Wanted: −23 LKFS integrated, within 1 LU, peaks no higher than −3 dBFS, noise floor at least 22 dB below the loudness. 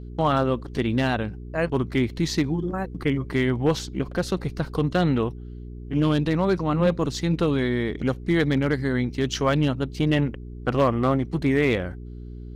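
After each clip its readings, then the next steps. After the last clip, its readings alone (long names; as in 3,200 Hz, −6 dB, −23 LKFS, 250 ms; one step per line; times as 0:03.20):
share of clipped samples 0.4%; peaks flattened at −12.0 dBFS; mains hum 60 Hz; hum harmonics up to 420 Hz; level of the hum −35 dBFS; integrated loudness −24.0 LKFS; sample peak −12.0 dBFS; target loudness −23.0 LKFS
→ clipped peaks rebuilt −12 dBFS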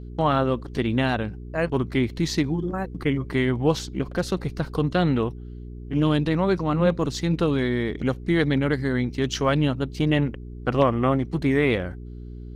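share of clipped samples 0.0%; mains hum 60 Hz; hum harmonics up to 420 Hz; level of the hum −35 dBFS
→ hum removal 60 Hz, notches 7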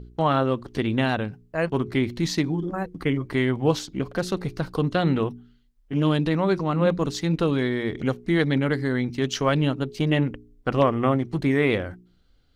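mains hum none found; integrated loudness −24.5 LKFS; sample peak −5.0 dBFS; target loudness −23.0 LKFS
→ level +1.5 dB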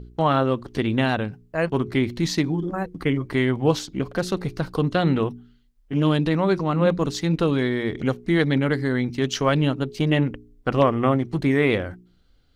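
integrated loudness −23.0 LKFS; sample peak −3.5 dBFS; background noise floor −59 dBFS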